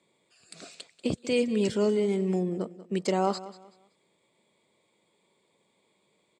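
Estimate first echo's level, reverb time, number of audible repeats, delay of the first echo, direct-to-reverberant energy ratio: -16.5 dB, no reverb, 2, 189 ms, no reverb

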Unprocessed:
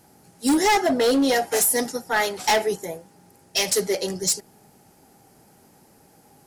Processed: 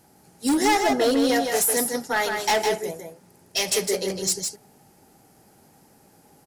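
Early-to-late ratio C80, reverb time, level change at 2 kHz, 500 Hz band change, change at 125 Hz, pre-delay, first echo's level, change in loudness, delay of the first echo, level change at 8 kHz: no reverb, no reverb, -1.0 dB, -1.0 dB, -1.0 dB, no reverb, -5.0 dB, -1.0 dB, 158 ms, -1.0 dB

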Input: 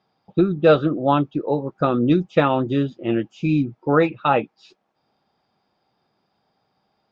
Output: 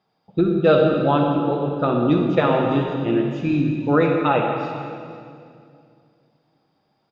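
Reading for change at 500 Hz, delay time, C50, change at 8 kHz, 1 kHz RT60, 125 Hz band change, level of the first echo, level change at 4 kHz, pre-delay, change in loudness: +1.0 dB, 498 ms, 2.0 dB, no reading, 2.2 s, +1.0 dB, -19.5 dB, +0.5 dB, 39 ms, +0.5 dB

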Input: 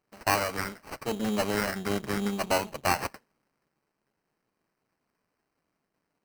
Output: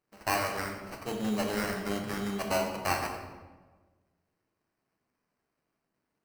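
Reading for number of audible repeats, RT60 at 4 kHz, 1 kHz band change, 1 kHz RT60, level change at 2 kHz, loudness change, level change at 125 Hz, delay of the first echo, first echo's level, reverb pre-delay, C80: no echo, 0.85 s, -3.0 dB, 1.2 s, -3.0 dB, -3.0 dB, -2.5 dB, no echo, no echo, 12 ms, 6.5 dB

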